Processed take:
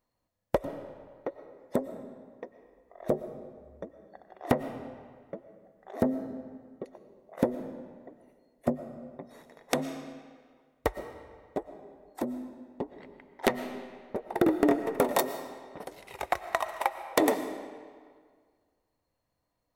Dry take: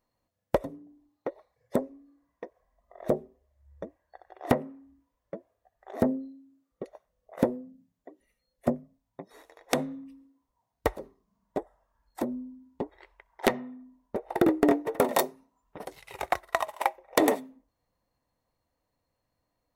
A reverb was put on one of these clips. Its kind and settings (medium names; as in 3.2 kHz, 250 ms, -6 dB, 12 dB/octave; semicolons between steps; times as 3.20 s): algorithmic reverb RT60 1.8 s, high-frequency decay 0.8×, pre-delay 75 ms, DRR 10.5 dB; trim -1.5 dB